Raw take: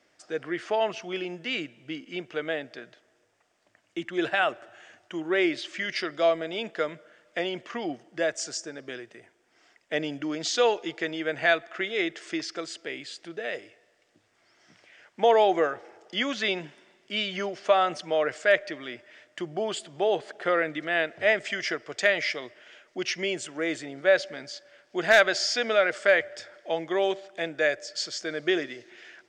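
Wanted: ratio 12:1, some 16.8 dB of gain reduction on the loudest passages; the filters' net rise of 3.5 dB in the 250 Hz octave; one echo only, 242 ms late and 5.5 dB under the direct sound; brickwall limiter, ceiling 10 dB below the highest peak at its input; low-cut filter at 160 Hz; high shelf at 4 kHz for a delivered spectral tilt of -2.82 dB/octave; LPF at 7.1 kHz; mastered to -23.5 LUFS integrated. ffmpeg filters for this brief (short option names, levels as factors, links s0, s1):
-af "highpass=160,lowpass=7100,equalizer=f=250:t=o:g=6,highshelf=f=4000:g=8,acompressor=threshold=0.0282:ratio=12,alimiter=level_in=1.68:limit=0.0631:level=0:latency=1,volume=0.596,aecho=1:1:242:0.531,volume=5.31"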